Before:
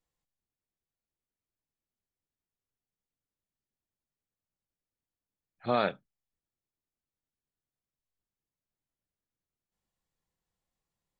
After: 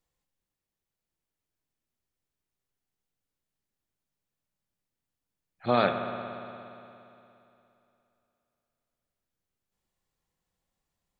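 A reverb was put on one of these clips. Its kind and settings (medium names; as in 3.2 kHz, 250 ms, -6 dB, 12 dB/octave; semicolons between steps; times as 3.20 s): spring tank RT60 2.9 s, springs 58 ms, chirp 80 ms, DRR 6 dB; trim +3.5 dB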